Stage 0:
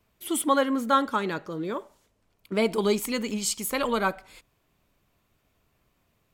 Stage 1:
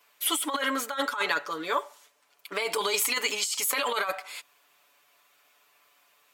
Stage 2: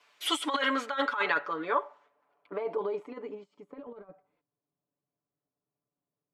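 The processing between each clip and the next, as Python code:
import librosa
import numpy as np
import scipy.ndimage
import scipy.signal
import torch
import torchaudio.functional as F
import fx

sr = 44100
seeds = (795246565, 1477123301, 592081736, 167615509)

y1 = scipy.signal.sosfilt(scipy.signal.butter(2, 880.0, 'highpass', fs=sr, output='sos'), x)
y1 = y1 + 0.72 * np.pad(y1, (int(6.9 * sr / 1000.0), 0))[:len(y1)]
y1 = fx.over_compress(y1, sr, threshold_db=-33.0, ratio=-1.0)
y1 = F.gain(torch.from_numpy(y1), 5.5).numpy()
y2 = fx.filter_sweep_lowpass(y1, sr, from_hz=5300.0, to_hz=170.0, start_s=0.33, end_s=4.28, q=0.81)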